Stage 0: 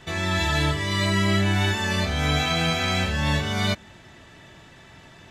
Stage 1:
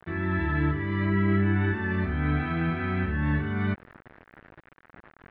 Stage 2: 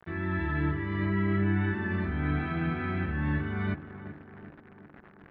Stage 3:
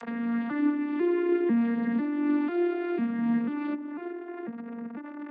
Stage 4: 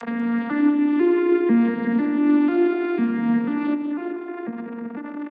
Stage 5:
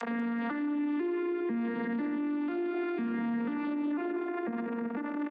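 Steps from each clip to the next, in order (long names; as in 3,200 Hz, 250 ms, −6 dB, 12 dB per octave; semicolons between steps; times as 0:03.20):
low shelf with overshoot 430 Hz +6.5 dB, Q 3; bit-depth reduction 6 bits, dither none; transistor ladder low-pass 2,000 Hz, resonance 45%
tape delay 374 ms, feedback 72%, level −10.5 dB, low-pass 1,400 Hz; level −3.5 dB
vocoder with an arpeggio as carrier major triad, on A#3, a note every 496 ms; dynamic equaliser 1,600 Hz, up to −5 dB, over −57 dBFS, Q 1.9; upward compression, threshold −33 dBFS; level +5 dB
repeating echo 191 ms, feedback 40%, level −10.5 dB; level +7 dB
Bessel high-pass filter 210 Hz, order 2; downward compressor, threshold −21 dBFS, peak gain reduction 6.5 dB; brickwall limiter −26 dBFS, peak gain reduction 11 dB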